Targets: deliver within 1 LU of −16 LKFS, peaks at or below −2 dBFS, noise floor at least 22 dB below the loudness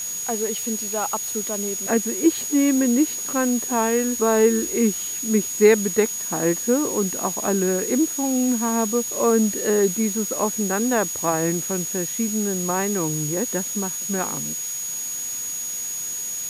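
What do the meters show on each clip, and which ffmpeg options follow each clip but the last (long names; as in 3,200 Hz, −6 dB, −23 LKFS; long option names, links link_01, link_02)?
interfering tone 6,700 Hz; level of the tone −27 dBFS; background noise floor −29 dBFS; target noise floor −44 dBFS; integrated loudness −21.5 LKFS; sample peak −3.5 dBFS; target loudness −16.0 LKFS
→ -af "bandreject=frequency=6700:width=30"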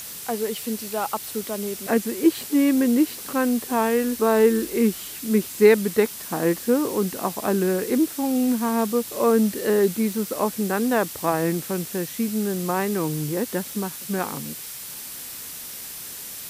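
interfering tone none found; background noise floor −36 dBFS; target noise floor −46 dBFS
→ -af "afftdn=noise_reduction=10:noise_floor=-36"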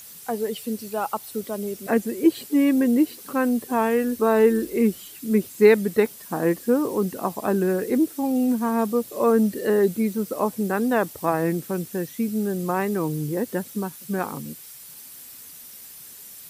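background noise floor −43 dBFS; target noise floor −45 dBFS
→ -af "afftdn=noise_reduction=6:noise_floor=-43"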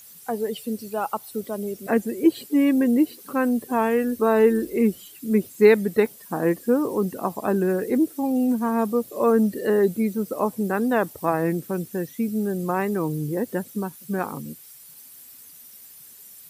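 background noise floor −46 dBFS; integrated loudness −23.0 LKFS; sample peak −4.0 dBFS; target loudness −16.0 LKFS
→ -af "volume=7dB,alimiter=limit=-2dB:level=0:latency=1"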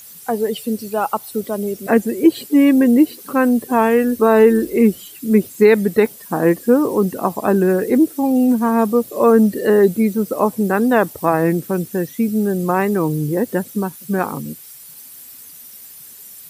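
integrated loudness −16.5 LKFS; sample peak −2.0 dBFS; background noise floor −39 dBFS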